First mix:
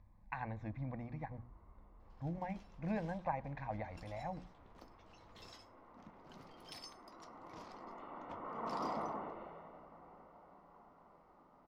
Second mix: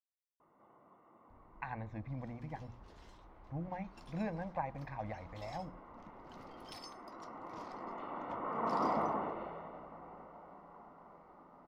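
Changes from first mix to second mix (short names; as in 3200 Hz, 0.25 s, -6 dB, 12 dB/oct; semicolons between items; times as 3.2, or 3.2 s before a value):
speech: entry +1.30 s; second sound +6.5 dB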